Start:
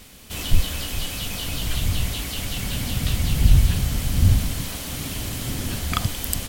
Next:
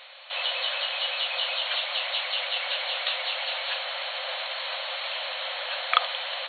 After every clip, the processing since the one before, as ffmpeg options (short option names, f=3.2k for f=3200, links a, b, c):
-af "afftfilt=real='re*between(b*sr/4096,500,4400)':imag='im*between(b*sr/4096,500,4400)':win_size=4096:overlap=0.75,volume=5dB"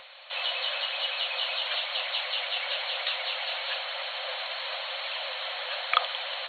-filter_complex "[0:a]acrossover=split=1200|1500[a][b][c];[a]acompressor=mode=upward:threshold=-52dB:ratio=2.5[d];[d][b][c]amix=inputs=3:normalize=0,aphaser=in_gain=1:out_gain=1:delay=3.1:decay=0.22:speed=1:type=triangular,volume=-2dB"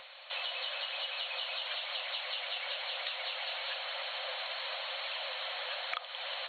-af "acompressor=threshold=-32dB:ratio=6,volume=-2.5dB"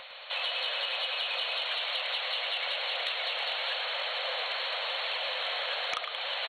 -filter_complex "[0:a]asplit=6[a][b][c][d][e][f];[b]adelay=106,afreqshift=-42,volume=-6.5dB[g];[c]adelay=212,afreqshift=-84,volume=-14.5dB[h];[d]adelay=318,afreqshift=-126,volume=-22.4dB[i];[e]adelay=424,afreqshift=-168,volume=-30.4dB[j];[f]adelay=530,afreqshift=-210,volume=-38.3dB[k];[a][g][h][i][j][k]amix=inputs=6:normalize=0,aeval=exprs='0.15*sin(PI/2*1.78*val(0)/0.15)':c=same,volume=-4dB"